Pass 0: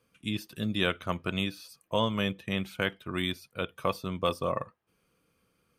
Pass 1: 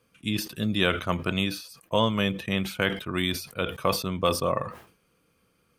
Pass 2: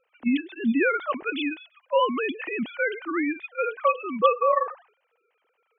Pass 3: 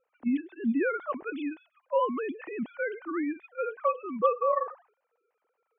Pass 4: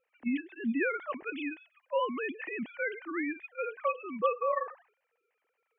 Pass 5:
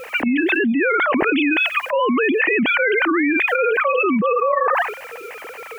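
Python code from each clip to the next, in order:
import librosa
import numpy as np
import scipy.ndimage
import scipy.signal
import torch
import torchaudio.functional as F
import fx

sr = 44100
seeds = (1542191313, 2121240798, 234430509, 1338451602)

y1 = fx.sustainer(x, sr, db_per_s=110.0)
y1 = F.gain(torch.from_numpy(y1), 4.0).numpy()
y2 = fx.sine_speech(y1, sr)
y2 = F.gain(torch.from_numpy(y2), 2.0).numpy()
y3 = scipy.signal.sosfilt(scipy.signal.butter(2, 1400.0, 'lowpass', fs=sr, output='sos'), y2)
y3 = F.gain(torch.from_numpy(y3), -4.0).numpy()
y4 = fx.band_shelf(y3, sr, hz=2300.0, db=10.5, octaves=1.1)
y4 = F.gain(torch.from_numpy(y4), -4.0).numpy()
y5 = fx.env_flatten(y4, sr, amount_pct=100)
y5 = F.gain(torch.from_numpy(y5), 6.0).numpy()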